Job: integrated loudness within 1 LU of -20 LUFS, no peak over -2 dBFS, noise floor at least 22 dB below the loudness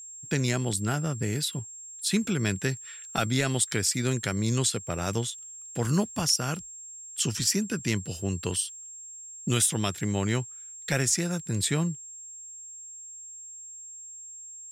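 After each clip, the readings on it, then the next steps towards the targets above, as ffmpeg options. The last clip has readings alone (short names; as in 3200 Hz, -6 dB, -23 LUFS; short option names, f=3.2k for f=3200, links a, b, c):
steady tone 7500 Hz; tone level -41 dBFS; loudness -28.0 LUFS; peak -12.0 dBFS; loudness target -20.0 LUFS
-> -af "bandreject=f=7.5k:w=30"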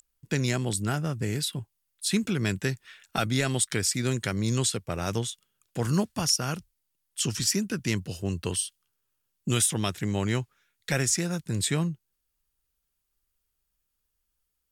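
steady tone none; loudness -28.0 LUFS; peak -12.0 dBFS; loudness target -20.0 LUFS
-> -af "volume=8dB"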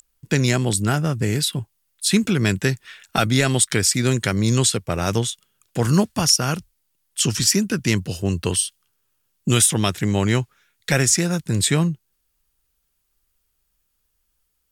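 loudness -20.0 LUFS; peak -4.0 dBFS; noise floor -71 dBFS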